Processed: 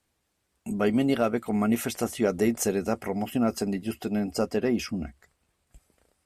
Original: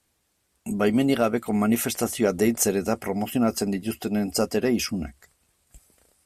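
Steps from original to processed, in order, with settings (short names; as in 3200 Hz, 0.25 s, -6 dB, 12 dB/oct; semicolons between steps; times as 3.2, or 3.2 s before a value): high shelf 5000 Hz -6 dB, from 4.2 s -11 dB; gain -2.5 dB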